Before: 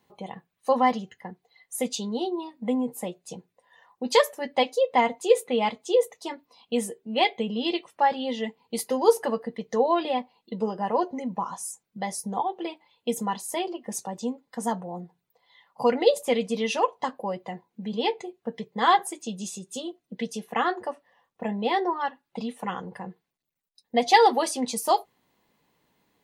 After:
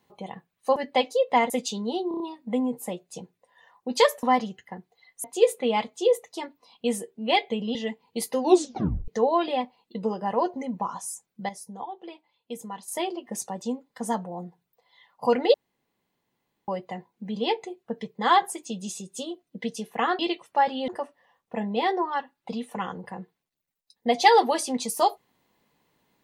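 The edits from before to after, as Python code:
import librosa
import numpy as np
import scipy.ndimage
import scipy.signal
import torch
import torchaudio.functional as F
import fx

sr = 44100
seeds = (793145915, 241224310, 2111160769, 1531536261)

y = fx.edit(x, sr, fx.swap(start_s=0.76, length_s=1.01, other_s=4.38, other_length_s=0.74),
    fx.stutter(start_s=2.35, slice_s=0.03, count=5),
    fx.move(start_s=7.63, length_s=0.69, to_s=20.76),
    fx.tape_stop(start_s=8.97, length_s=0.68),
    fx.clip_gain(start_s=12.06, length_s=1.39, db=-9.0),
    fx.room_tone_fill(start_s=16.11, length_s=1.14), tone=tone)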